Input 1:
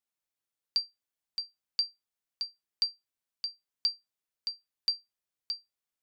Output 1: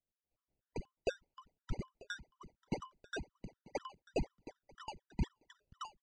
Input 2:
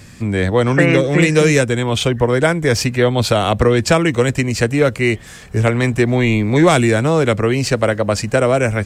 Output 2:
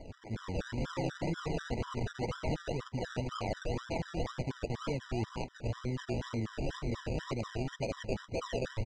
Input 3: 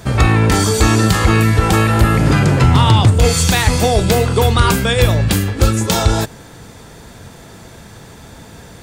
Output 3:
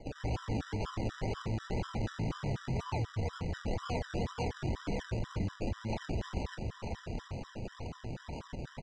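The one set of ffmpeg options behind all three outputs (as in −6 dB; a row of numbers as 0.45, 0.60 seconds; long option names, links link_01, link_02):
-filter_complex "[0:a]highpass=68,lowshelf=frequency=370:gain=-9.5,acrossover=split=430|3300[link_01][link_02][link_03];[link_01]adelay=90[link_04];[link_03]adelay=310[link_05];[link_04][link_02][link_05]amix=inputs=3:normalize=0,acrusher=samples=33:mix=1:aa=0.000001:lfo=1:lforange=19.8:lforate=2,lowpass=frequency=6500:width=0.5412,lowpass=frequency=6500:width=1.3066,lowshelf=frequency=100:gain=11.5,asplit=2[link_06][link_07];[link_07]aecho=0:1:941:0.0708[link_08];[link_06][link_08]amix=inputs=2:normalize=0,alimiter=limit=-9.5dB:level=0:latency=1:release=10,areverse,acompressor=threshold=-30dB:ratio=10,areverse,afftfilt=real='re*gt(sin(2*PI*4.1*pts/sr)*(1-2*mod(floor(b*sr/1024/990),2)),0)':imag='im*gt(sin(2*PI*4.1*pts/sr)*(1-2*mod(floor(b*sr/1024/990),2)),0)':win_size=1024:overlap=0.75"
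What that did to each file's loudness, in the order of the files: −10.5, −22.5, −25.0 LU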